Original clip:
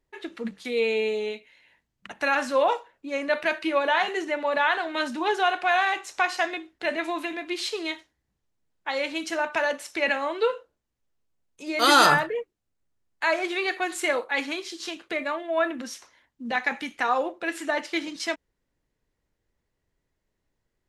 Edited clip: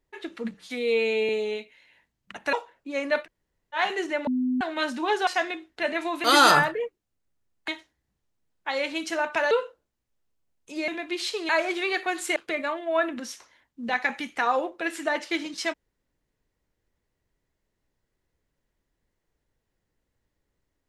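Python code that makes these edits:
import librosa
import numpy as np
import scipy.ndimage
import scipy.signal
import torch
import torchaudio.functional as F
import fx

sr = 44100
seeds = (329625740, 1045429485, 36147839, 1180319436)

y = fx.edit(x, sr, fx.stretch_span(start_s=0.54, length_s=0.5, factor=1.5),
    fx.cut(start_s=2.28, length_s=0.43),
    fx.room_tone_fill(start_s=3.41, length_s=0.54, crossfade_s=0.1),
    fx.bleep(start_s=4.45, length_s=0.34, hz=253.0, db=-22.0),
    fx.cut(start_s=5.45, length_s=0.85),
    fx.swap(start_s=7.27, length_s=0.61, other_s=11.79, other_length_s=1.44),
    fx.cut(start_s=9.71, length_s=0.71),
    fx.cut(start_s=14.1, length_s=0.88), tone=tone)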